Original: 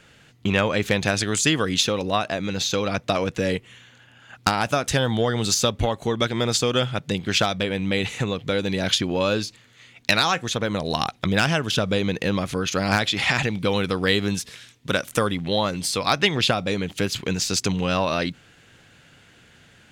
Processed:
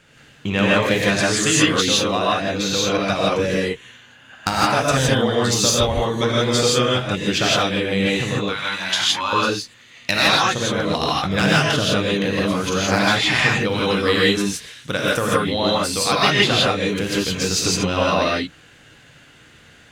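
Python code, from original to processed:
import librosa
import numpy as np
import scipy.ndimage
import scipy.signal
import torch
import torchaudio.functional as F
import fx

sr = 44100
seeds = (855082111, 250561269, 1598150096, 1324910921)

y = fx.low_shelf_res(x, sr, hz=680.0, db=-13.5, q=3.0, at=(8.45, 9.33))
y = fx.rev_gated(y, sr, seeds[0], gate_ms=190, shape='rising', drr_db=-6.0)
y = y * 10.0 ** (-2.0 / 20.0)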